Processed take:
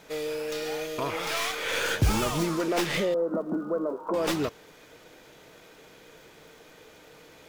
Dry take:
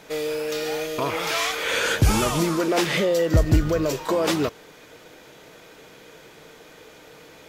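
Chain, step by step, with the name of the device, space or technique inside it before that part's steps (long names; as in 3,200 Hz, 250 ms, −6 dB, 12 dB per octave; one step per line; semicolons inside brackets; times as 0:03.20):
0:03.14–0:04.14: Chebyshev band-pass filter 180–1,400 Hz, order 5
record under a worn stylus (stylus tracing distortion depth 0.069 ms; surface crackle 77 per second −43 dBFS; pink noise bed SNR 39 dB)
level −5 dB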